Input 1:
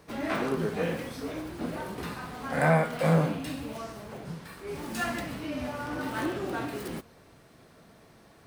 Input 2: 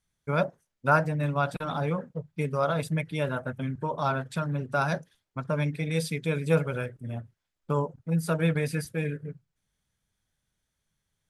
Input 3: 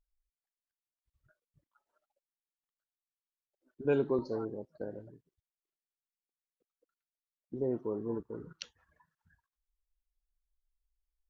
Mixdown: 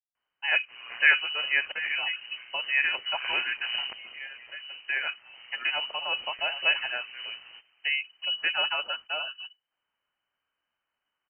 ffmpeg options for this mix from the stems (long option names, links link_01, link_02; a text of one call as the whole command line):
ffmpeg -i stem1.wav -i stem2.wav -i stem3.wav -filter_complex "[0:a]aeval=exprs='val(0)*sin(2*PI*60*n/s)':channel_layout=same,adelay=600,volume=-7.5dB[link_01];[1:a]aemphasis=mode=production:type=bsi,adelay=150,volume=2.5dB[link_02];[2:a]equalizer=frequency=125:width_type=o:width=1:gain=8,equalizer=frequency=250:width_type=o:width=1:gain=-10,equalizer=frequency=1000:width_type=o:width=1:gain=-11,equalizer=frequency=4000:width_type=o:width=1:gain=-9,acrusher=bits=3:mix=0:aa=0.000001,volume=-2dB,asplit=2[link_03][link_04];[link_04]apad=whole_len=504621[link_05];[link_02][link_05]sidechaincompress=threshold=-54dB:ratio=4:attack=11:release=888[link_06];[link_01][link_06][link_03]amix=inputs=3:normalize=0,equalizer=frequency=350:width_type=o:width=0.29:gain=-14.5,lowpass=frequency=2600:width_type=q:width=0.5098,lowpass=frequency=2600:width_type=q:width=0.6013,lowpass=frequency=2600:width_type=q:width=0.9,lowpass=frequency=2600:width_type=q:width=2.563,afreqshift=-3100" out.wav